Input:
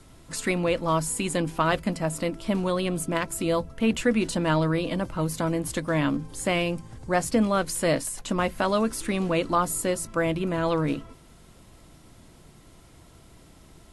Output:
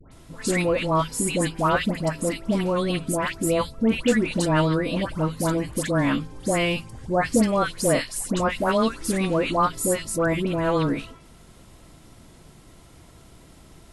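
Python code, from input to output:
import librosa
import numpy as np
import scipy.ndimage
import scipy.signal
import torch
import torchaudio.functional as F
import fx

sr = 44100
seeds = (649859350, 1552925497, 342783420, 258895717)

y = fx.dispersion(x, sr, late='highs', ms=117.0, hz=1400.0)
y = F.gain(torch.from_numpy(y), 2.5).numpy()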